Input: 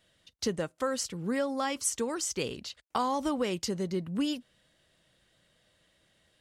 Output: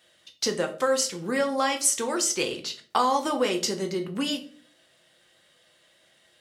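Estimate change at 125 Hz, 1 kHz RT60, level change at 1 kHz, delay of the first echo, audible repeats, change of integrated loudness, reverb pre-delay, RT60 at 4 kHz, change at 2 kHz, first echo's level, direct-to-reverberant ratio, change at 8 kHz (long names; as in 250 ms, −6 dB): −1.0 dB, 0.40 s, +7.5 dB, no echo audible, no echo audible, +6.0 dB, 6 ms, 0.30 s, +8.0 dB, no echo audible, 4.0 dB, +8.0 dB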